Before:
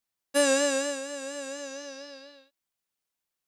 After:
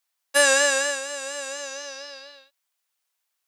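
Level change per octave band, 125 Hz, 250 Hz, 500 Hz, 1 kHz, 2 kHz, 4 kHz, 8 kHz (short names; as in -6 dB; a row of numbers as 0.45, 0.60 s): n/a, -9.0 dB, +2.0 dB, +6.5 dB, +11.0 dB, +7.5 dB, +7.5 dB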